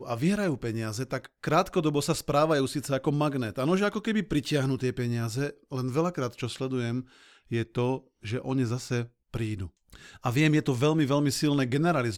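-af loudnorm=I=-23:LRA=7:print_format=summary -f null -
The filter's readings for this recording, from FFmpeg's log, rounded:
Input Integrated:    -27.8 LUFS
Input True Peak:     -10.4 dBTP
Input LRA:             4.3 LU
Input Threshold:     -38.1 LUFS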